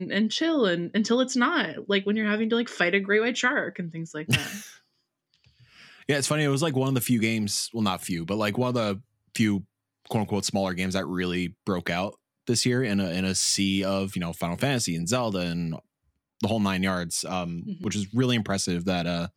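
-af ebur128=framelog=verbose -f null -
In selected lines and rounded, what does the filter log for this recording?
Integrated loudness:
  I:         -26.0 LUFS
  Threshold: -36.4 LUFS
Loudness range:
  LRA:         4.0 LU
  Threshold: -46.7 LUFS
  LRA low:   -28.5 LUFS
  LRA high:  -24.5 LUFS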